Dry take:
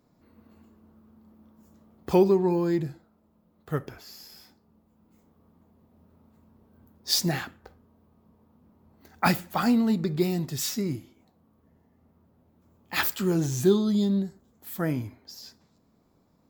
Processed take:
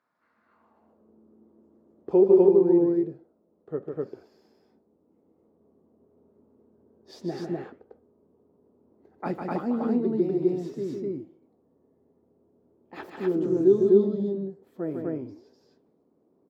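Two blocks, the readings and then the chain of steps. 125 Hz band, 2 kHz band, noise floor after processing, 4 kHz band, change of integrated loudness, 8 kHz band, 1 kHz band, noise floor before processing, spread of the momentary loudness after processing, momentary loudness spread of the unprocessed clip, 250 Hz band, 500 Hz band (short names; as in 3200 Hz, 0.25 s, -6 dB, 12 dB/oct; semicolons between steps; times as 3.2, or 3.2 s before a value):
-6.5 dB, -13.5 dB, -68 dBFS, -22.0 dB, +1.0 dB, under -25 dB, -6.5 dB, -66 dBFS, 19 LU, 19 LU, +0.5 dB, +6.0 dB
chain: flange 1.3 Hz, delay 1.7 ms, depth 8.8 ms, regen -89%; loudspeakers at several distances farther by 52 m -5 dB, 86 m 0 dB; band-pass sweep 1500 Hz -> 400 Hz, 0.44–1.15; gain +7.5 dB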